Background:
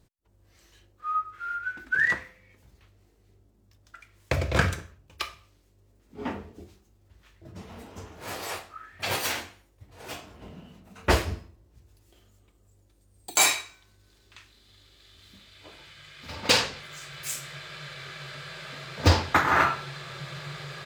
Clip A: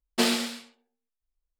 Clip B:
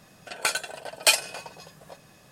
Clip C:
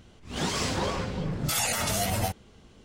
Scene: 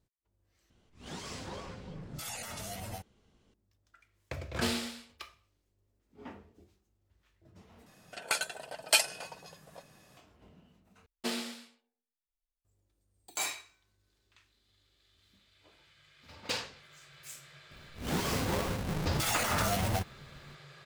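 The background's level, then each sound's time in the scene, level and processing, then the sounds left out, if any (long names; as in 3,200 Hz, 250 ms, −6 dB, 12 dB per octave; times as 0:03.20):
background −14 dB
0:00.70: overwrite with C −14 dB
0:04.43: mix in A −8.5 dB
0:07.86: overwrite with B −5.5 dB
0:11.06: overwrite with A −11.5 dB
0:17.71: mix in C −8 dB + each half-wave held at its own peak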